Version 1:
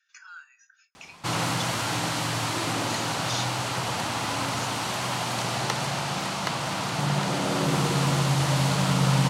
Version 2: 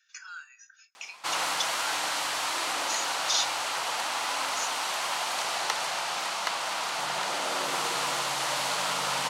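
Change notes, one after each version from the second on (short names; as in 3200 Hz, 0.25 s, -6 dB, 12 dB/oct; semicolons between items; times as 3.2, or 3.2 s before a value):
speech: add high shelf 2500 Hz +8.5 dB; master: add HPF 680 Hz 12 dB/oct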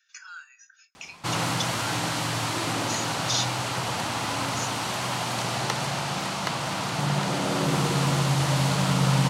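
master: remove HPF 680 Hz 12 dB/oct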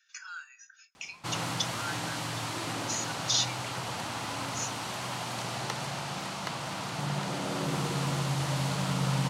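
background -7.0 dB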